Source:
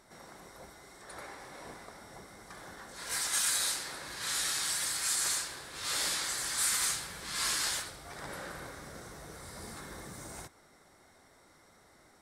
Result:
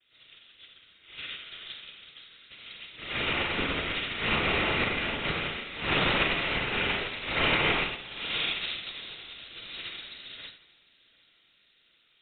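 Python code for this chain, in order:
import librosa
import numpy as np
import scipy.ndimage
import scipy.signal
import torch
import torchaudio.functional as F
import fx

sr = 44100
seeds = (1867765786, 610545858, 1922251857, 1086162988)

p1 = fx.low_shelf(x, sr, hz=140.0, db=-8.5)
p2 = fx.fold_sine(p1, sr, drive_db=15, ceiling_db=-16.0)
p3 = p1 + (p2 * 10.0 ** (-11.5 / 20.0))
p4 = fx.noise_vocoder(p3, sr, seeds[0], bands=16)
p5 = p4 + fx.echo_feedback(p4, sr, ms=749, feedback_pct=58, wet_db=-13, dry=0)
p6 = fx.rev_schroeder(p5, sr, rt60_s=1.2, comb_ms=32, drr_db=0.5)
p7 = fx.freq_invert(p6, sr, carrier_hz=4000)
p8 = fx.upward_expand(p7, sr, threshold_db=-43.0, expansion=2.5)
y = p8 * 10.0 ** (5.5 / 20.0)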